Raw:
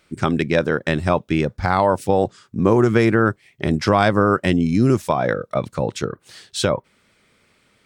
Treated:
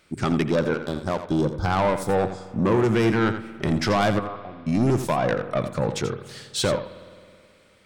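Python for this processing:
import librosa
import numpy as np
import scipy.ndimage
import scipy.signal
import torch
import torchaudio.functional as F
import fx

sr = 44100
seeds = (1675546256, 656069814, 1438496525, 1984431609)

y = fx.spec_box(x, sr, start_s=0.51, length_s=2.16, low_hz=1600.0, high_hz=3200.0, gain_db=-27)
y = fx.formant_cascade(y, sr, vowel='a', at=(4.18, 4.66), fade=0.02)
y = 10.0 ** (-16.0 / 20.0) * np.tanh(y / 10.0 ** (-16.0 / 20.0))
y = fx.power_curve(y, sr, exponent=3.0, at=(0.74, 1.27))
y = y + 10.0 ** (-10.5 / 20.0) * np.pad(y, (int(85 * sr / 1000.0), 0))[:len(y)]
y = fx.rev_spring(y, sr, rt60_s=2.3, pass_ms=(53,), chirp_ms=25, drr_db=15.0)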